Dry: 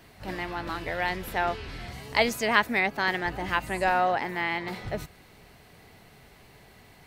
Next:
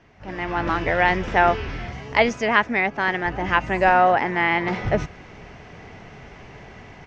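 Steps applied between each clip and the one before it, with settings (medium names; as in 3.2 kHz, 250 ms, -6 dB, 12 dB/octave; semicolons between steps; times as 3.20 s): steep low-pass 6.2 kHz 48 dB/octave; peaking EQ 4.2 kHz -13.5 dB 0.53 oct; level rider gain up to 13 dB; trim -1 dB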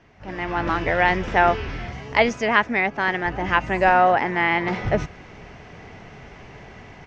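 no audible change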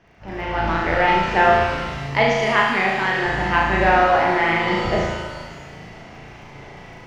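crackle 11 per s -42 dBFS; on a send: flutter echo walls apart 6.2 m, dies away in 0.91 s; on the sum: pitch-shifted reverb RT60 1.6 s, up +7 st, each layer -8 dB, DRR 6 dB; trim -2 dB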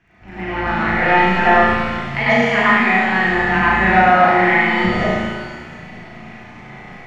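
reverberation RT60 0.70 s, pre-delay 95 ms, DRR -5.5 dB; trim -5 dB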